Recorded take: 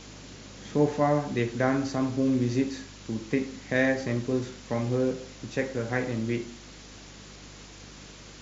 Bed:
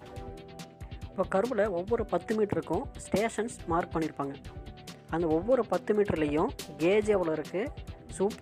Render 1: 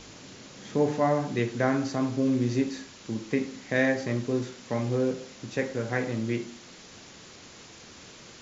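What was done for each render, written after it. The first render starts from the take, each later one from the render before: de-hum 50 Hz, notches 6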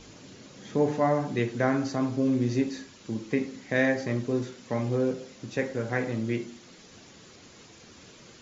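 denoiser 6 dB, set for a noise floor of -49 dBFS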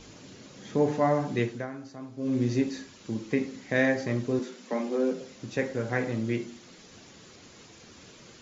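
1.44–2.39 dip -14 dB, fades 0.23 s; 4.39–5.21 steep high-pass 170 Hz 96 dB/oct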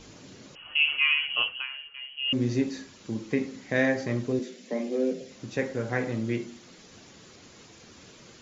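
0.55–2.33 inverted band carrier 3100 Hz; 4.32–5.31 band shelf 1100 Hz -10.5 dB 1.1 oct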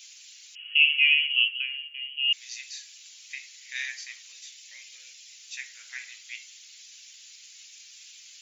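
Chebyshev high-pass 2400 Hz, order 3; tilt +3 dB/oct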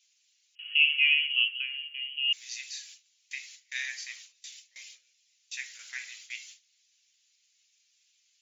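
gate with hold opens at -35 dBFS; dynamic EQ 2800 Hz, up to -3 dB, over -32 dBFS, Q 0.81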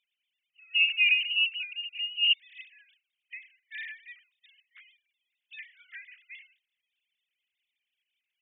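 sine-wave speech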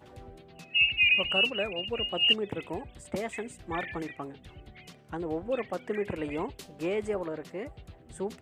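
add bed -5.5 dB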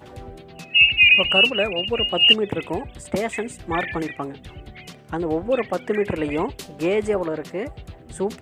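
gain +9.5 dB

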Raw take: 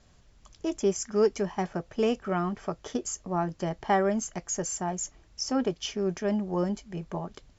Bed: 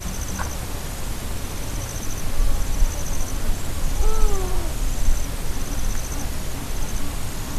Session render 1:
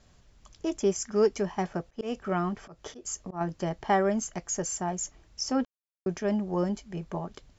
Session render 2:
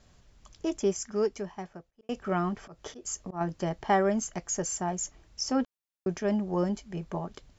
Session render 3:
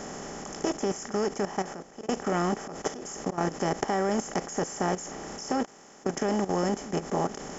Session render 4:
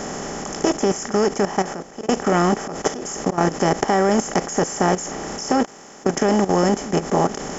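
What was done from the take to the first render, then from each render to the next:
1.87–3.41 auto swell 0.174 s; 5.65–6.06 mute
0.66–2.09 fade out
per-bin compression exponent 0.4; level quantiser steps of 13 dB
gain +9.5 dB; limiter -1 dBFS, peak gain reduction 1.5 dB

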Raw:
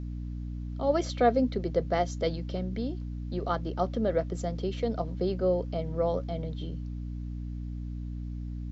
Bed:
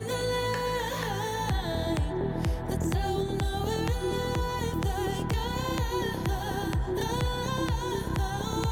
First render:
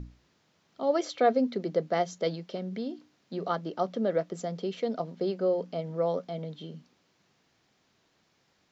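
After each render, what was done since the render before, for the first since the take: notches 60/120/180/240/300 Hz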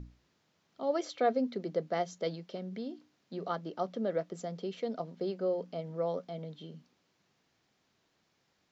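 gain -5 dB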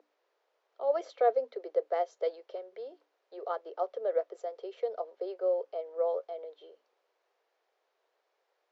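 steep high-pass 440 Hz 48 dB/oct; tilt -4.5 dB/oct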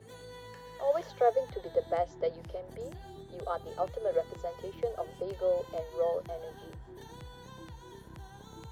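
add bed -19 dB

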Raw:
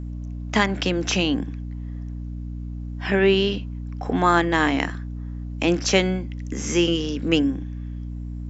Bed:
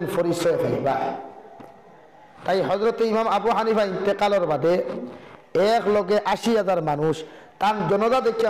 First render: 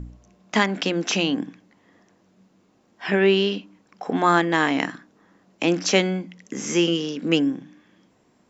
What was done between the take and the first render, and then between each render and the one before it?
de-hum 60 Hz, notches 5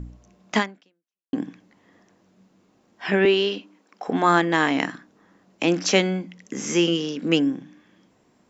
0.58–1.33 fade out exponential; 3.25–4.08 HPF 240 Hz 24 dB/oct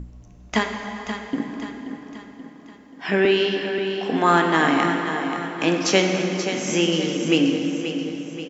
feedback echo 0.531 s, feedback 48%, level -9 dB; plate-style reverb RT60 3.8 s, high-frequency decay 0.65×, DRR 3 dB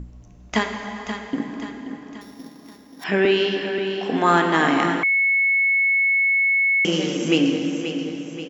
2.21–3.04 sample sorter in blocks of 8 samples; 5.03–6.85 bleep 2200 Hz -15.5 dBFS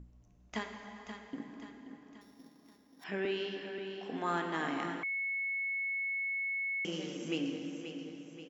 gain -17 dB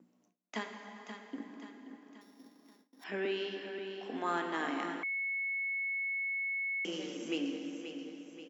gate with hold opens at -53 dBFS; steep high-pass 200 Hz 36 dB/oct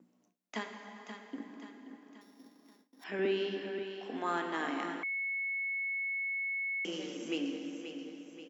3.19–3.83 low shelf 340 Hz +9 dB

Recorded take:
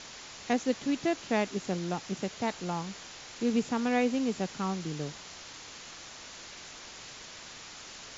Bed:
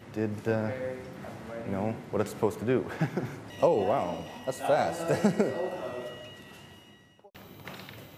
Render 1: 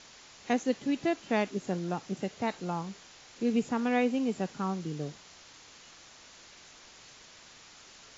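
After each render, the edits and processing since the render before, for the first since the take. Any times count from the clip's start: noise print and reduce 7 dB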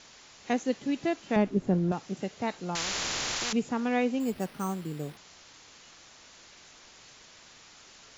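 1.36–1.92 tilt -3.5 dB/oct; 2.75–3.53 spectral compressor 10:1; 4.2–5.17 careless resampling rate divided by 6×, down none, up hold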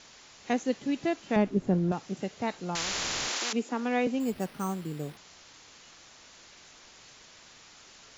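3.29–4.07 steep high-pass 230 Hz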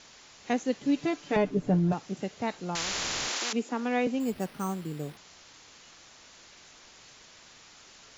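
0.84–1.94 comb 6.8 ms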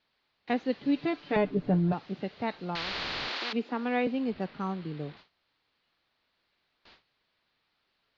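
gate with hold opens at -40 dBFS; elliptic low-pass 4400 Hz, stop band 60 dB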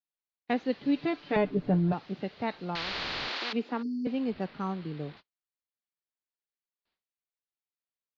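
gate -48 dBFS, range -29 dB; 3.82–4.06 spectral delete 470–4300 Hz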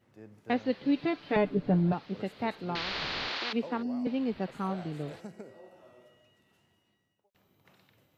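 add bed -20 dB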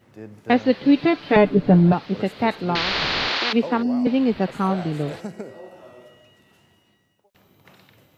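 gain +11.5 dB

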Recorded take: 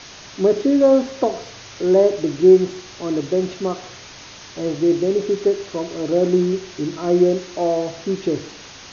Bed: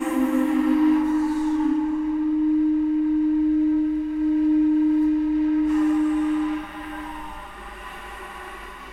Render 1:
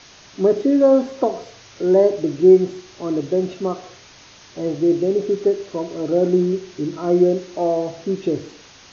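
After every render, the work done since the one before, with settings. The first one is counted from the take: noise print and reduce 6 dB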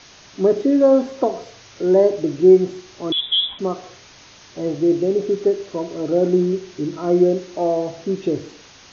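3.12–3.59 inverted band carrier 3700 Hz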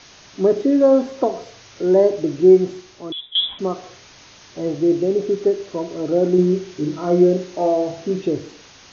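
2.72–3.35 fade out, to -19.5 dB; 6.35–8.22 doubler 33 ms -5 dB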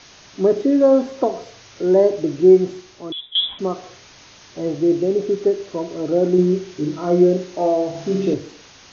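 7.9–8.34 flutter echo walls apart 8.2 m, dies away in 0.99 s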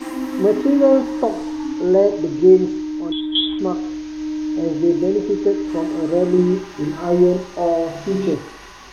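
add bed -3.5 dB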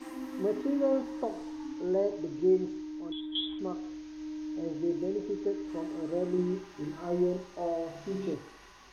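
gain -14.5 dB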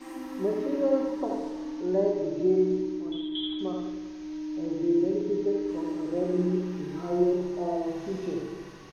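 on a send: echo 82 ms -4.5 dB; on the sum: shoebox room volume 1100 m³, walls mixed, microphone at 1.1 m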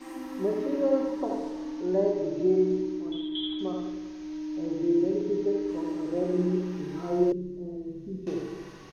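7.32–8.27 EQ curve 240 Hz 0 dB, 510 Hz -12 dB, 730 Hz -29 dB, 3800 Hz -18 dB

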